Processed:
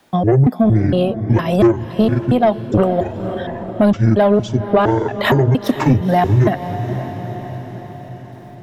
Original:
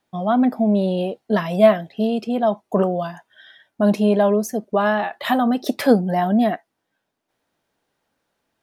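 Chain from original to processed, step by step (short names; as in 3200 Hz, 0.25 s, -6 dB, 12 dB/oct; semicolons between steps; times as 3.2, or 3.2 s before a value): trilling pitch shifter -11 st, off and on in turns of 0.231 s; transient shaper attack +3 dB, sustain -7 dB; in parallel at +2 dB: limiter -11 dBFS, peak gain reduction 10.5 dB; on the sum: soft clip -4 dBFS, distortion -18 dB; diffused feedback echo 0.493 s, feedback 46%, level -13 dB; three-band squash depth 40%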